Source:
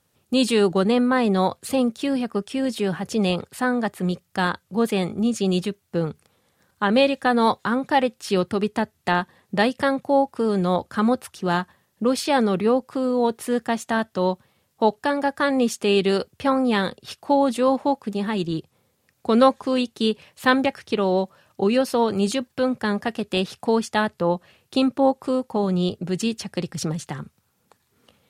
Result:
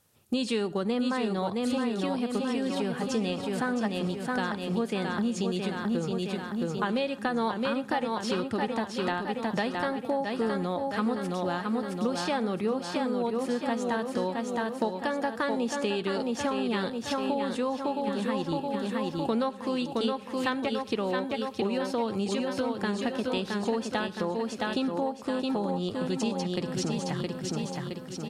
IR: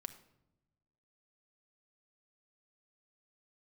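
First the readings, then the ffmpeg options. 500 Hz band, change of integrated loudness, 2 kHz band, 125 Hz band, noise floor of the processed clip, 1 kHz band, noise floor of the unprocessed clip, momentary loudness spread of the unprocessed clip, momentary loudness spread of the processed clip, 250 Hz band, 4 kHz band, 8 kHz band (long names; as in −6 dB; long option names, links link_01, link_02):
−7.5 dB, −7.5 dB, −7.0 dB, −6.5 dB, −40 dBFS, −7.5 dB, −69 dBFS, 7 LU, 2 LU, −6.5 dB, −6.5 dB, −6.0 dB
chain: -filter_complex "[0:a]acrossover=split=7700[link_01][link_02];[link_02]acompressor=threshold=-58dB:ratio=4:attack=1:release=60[link_03];[link_01][link_03]amix=inputs=2:normalize=0,asplit=2[link_04][link_05];[link_05]aecho=0:1:667|1334|2001|2668|3335|4002:0.562|0.287|0.146|0.0746|0.038|0.0194[link_06];[link_04][link_06]amix=inputs=2:normalize=0,acompressor=threshold=-25dB:ratio=6,asplit=2[link_07][link_08];[link_08]highshelf=frequency=6800:gain=10.5[link_09];[1:a]atrim=start_sample=2205,atrim=end_sample=3528,asetrate=25578,aresample=44100[link_10];[link_09][link_10]afir=irnorm=-1:irlink=0,volume=-3dB[link_11];[link_07][link_11]amix=inputs=2:normalize=0,volume=-5dB"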